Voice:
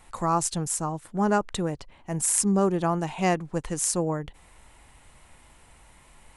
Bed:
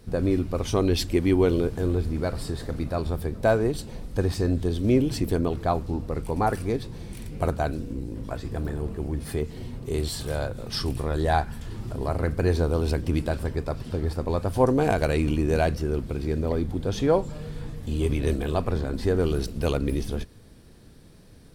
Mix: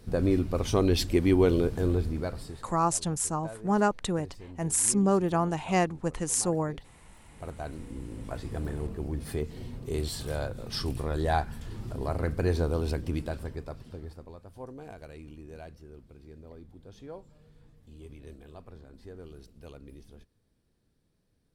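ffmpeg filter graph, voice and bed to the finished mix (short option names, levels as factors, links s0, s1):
-filter_complex "[0:a]adelay=2500,volume=0.841[s0];[1:a]volume=6.68,afade=t=out:st=1.92:d=0.8:silence=0.0944061,afade=t=in:st=7.26:d=1.13:silence=0.125893,afade=t=out:st=12.65:d=1.72:silence=0.11885[s1];[s0][s1]amix=inputs=2:normalize=0"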